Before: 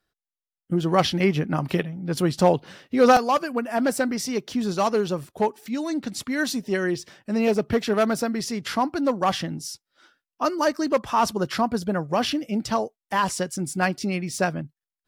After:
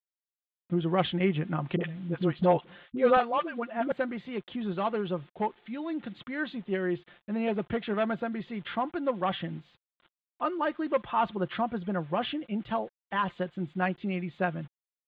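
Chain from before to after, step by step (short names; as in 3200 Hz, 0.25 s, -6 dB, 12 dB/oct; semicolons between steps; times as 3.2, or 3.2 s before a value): bit-crush 8-bit; elliptic low-pass 3500 Hz, stop band 40 dB; comb 5.7 ms, depth 37%; 1.76–3.92 dispersion highs, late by 48 ms, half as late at 490 Hz; gain -6.5 dB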